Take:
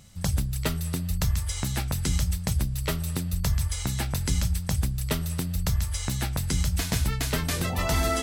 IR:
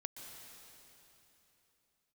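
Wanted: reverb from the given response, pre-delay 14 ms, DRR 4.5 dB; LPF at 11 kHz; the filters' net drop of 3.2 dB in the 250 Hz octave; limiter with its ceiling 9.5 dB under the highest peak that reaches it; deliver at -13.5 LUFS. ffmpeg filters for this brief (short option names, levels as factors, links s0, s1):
-filter_complex "[0:a]lowpass=11000,equalizer=f=250:t=o:g=-5.5,alimiter=limit=0.0794:level=0:latency=1,asplit=2[s0][s1];[1:a]atrim=start_sample=2205,adelay=14[s2];[s1][s2]afir=irnorm=-1:irlink=0,volume=0.794[s3];[s0][s3]amix=inputs=2:normalize=0,volume=6.68"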